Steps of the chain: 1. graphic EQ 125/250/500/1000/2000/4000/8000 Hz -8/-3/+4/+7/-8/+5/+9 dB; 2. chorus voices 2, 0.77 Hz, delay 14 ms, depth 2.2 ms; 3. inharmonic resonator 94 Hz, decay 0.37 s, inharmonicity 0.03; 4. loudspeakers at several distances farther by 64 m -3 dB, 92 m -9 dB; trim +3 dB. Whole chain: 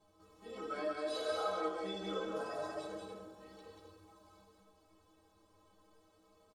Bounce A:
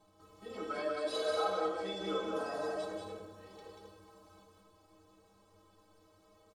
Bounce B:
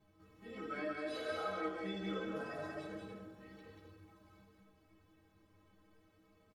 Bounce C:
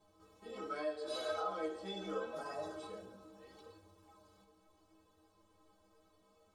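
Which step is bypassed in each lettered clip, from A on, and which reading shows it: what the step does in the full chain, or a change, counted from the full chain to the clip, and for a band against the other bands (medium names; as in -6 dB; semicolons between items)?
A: 2, loudness change +3.0 LU; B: 1, momentary loudness spread change -1 LU; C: 4, echo-to-direct -2.0 dB to none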